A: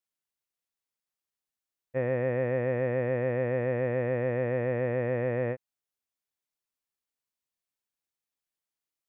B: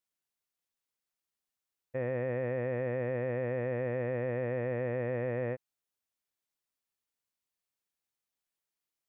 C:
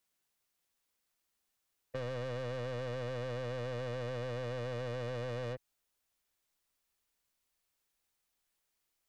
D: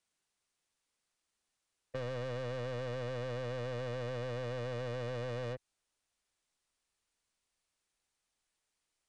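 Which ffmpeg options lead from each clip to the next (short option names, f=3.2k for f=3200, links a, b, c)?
-af "alimiter=level_in=0.5dB:limit=-24dB:level=0:latency=1:release=48,volume=-0.5dB"
-filter_complex "[0:a]asubboost=boost=2.5:cutoff=75,asoftclip=type=tanh:threshold=-39dB,acrossover=split=130|3000[a][b][c];[b]acompressor=threshold=-44dB:ratio=6[d];[a][d][c]amix=inputs=3:normalize=0,volume=7dB"
-af "aresample=22050,aresample=44100"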